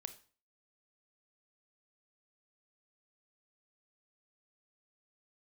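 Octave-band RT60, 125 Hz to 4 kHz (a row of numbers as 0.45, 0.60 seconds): 0.45, 0.45, 0.40, 0.40, 0.40, 0.35 seconds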